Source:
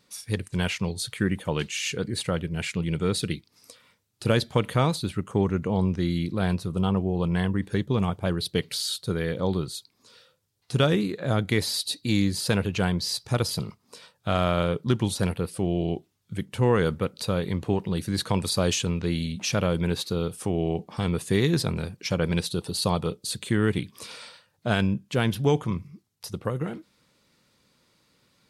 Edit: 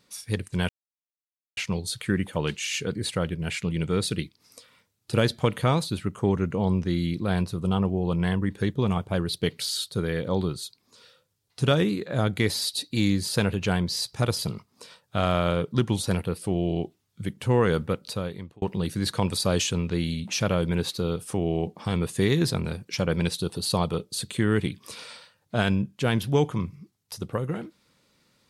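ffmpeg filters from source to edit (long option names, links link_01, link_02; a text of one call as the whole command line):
ffmpeg -i in.wav -filter_complex "[0:a]asplit=3[link_01][link_02][link_03];[link_01]atrim=end=0.69,asetpts=PTS-STARTPTS,afade=type=out:start_time=0.686:duration=0.004:curve=hsin,apad=pad_dur=0.88[link_04];[link_02]atrim=start=0.69:end=17.74,asetpts=PTS-STARTPTS,afade=type=in:duration=0.004:curve=hsin,afade=type=out:start_time=16.37:duration=0.68[link_05];[link_03]atrim=start=17.74,asetpts=PTS-STARTPTS,afade=type=in:duration=0.004:curve=hsin[link_06];[link_04][link_05][link_06]concat=n=3:v=0:a=1" out.wav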